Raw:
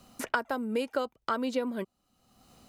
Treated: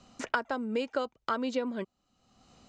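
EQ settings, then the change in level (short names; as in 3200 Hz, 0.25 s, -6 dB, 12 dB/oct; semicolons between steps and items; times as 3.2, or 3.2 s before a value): Chebyshev low-pass 7200 Hz, order 4; 0.0 dB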